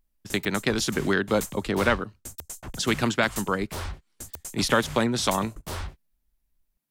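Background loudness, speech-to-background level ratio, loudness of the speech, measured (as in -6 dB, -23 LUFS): -38.5 LUFS, 12.5 dB, -26.0 LUFS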